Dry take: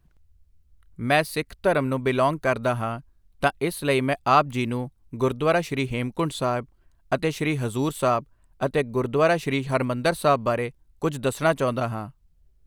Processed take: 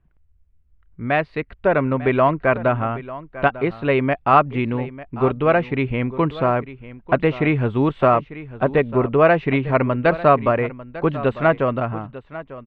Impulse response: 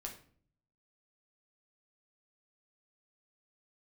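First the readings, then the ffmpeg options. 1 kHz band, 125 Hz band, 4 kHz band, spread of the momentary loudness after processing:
+5.0 dB, +5.0 dB, −4.5 dB, 12 LU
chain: -filter_complex "[0:a]lowpass=frequency=2600:width=0.5412,lowpass=frequency=2600:width=1.3066,dynaudnorm=framelen=640:gausssize=5:maxgain=11.5dB,asplit=2[link_01][link_02];[link_02]aecho=0:1:897:0.158[link_03];[link_01][link_03]amix=inputs=2:normalize=0,volume=-1dB"

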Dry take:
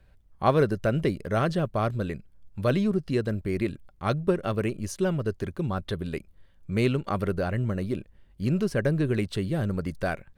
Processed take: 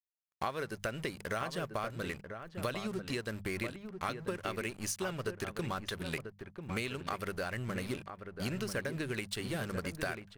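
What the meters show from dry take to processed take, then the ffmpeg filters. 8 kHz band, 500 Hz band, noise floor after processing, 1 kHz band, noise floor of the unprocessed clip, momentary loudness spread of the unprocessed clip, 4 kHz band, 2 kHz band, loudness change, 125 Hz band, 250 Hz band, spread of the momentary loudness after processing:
+2.0 dB, −11.5 dB, −60 dBFS, −7.5 dB, −58 dBFS, 8 LU, −1.0 dB, −3.0 dB, −10.5 dB, −13.5 dB, −12.5 dB, 4 LU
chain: -filter_complex "[0:a]aeval=exprs='sgn(val(0))*max(abs(val(0))-0.00447,0)':channel_layout=same,tiltshelf=frequency=930:gain=-8.5,bandreject=frequency=50:width_type=h:width=6,bandreject=frequency=100:width_type=h:width=6,bandreject=frequency=150:width_type=h:width=6,bandreject=frequency=200:width_type=h:width=6,acompressor=threshold=-37dB:ratio=10,equalizer=frequency=3600:width_type=o:width=0.77:gain=-2.5,asplit=2[link_01][link_02];[link_02]adelay=991.3,volume=-7dB,highshelf=frequency=4000:gain=-22.3[link_03];[link_01][link_03]amix=inputs=2:normalize=0,volume=4dB"

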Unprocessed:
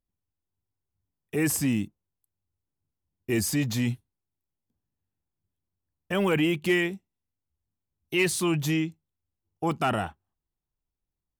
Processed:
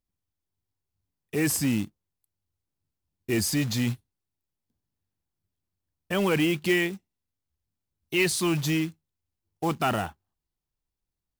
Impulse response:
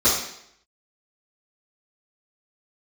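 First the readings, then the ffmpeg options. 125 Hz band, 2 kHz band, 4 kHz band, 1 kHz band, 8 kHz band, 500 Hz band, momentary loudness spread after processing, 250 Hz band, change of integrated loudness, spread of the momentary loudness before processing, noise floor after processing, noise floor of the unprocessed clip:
0.0 dB, +0.5 dB, +2.5 dB, 0.0 dB, +1.0 dB, 0.0 dB, 11 LU, 0.0 dB, +0.5 dB, 10 LU, below −85 dBFS, below −85 dBFS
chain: -af "equalizer=frequency=4600:width_type=o:width=0.69:gain=4.5,acrusher=bits=4:mode=log:mix=0:aa=0.000001"

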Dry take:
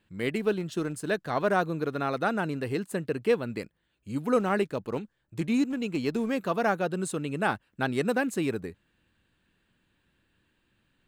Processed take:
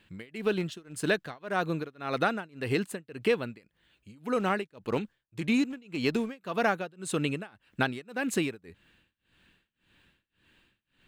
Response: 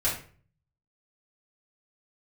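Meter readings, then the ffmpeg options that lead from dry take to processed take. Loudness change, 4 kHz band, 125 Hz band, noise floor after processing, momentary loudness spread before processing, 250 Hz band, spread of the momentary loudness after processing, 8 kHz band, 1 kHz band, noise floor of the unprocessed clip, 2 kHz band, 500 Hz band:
−2.0 dB, +2.5 dB, −2.5 dB, −82 dBFS, 9 LU, −2.5 dB, 9 LU, +0.5 dB, −3.0 dB, −75 dBFS, 0.0 dB, −3.0 dB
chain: -af "equalizer=frequency=2800:width_type=o:width=1.6:gain=6.5,acompressor=threshold=-29dB:ratio=3,tremolo=f=1.8:d=0.97,volume=5.5dB"

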